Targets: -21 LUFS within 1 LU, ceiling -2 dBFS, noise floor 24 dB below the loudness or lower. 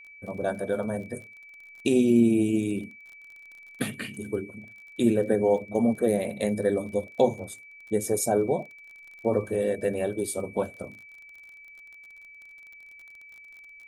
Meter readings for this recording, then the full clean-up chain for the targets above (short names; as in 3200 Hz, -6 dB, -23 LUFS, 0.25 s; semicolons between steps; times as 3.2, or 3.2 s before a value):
ticks 36/s; steady tone 2300 Hz; tone level -46 dBFS; loudness -26.5 LUFS; peak -8.5 dBFS; loudness target -21.0 LUFS
-> de-click; notch 2300 Hz, Q 30; gain +5.5 dB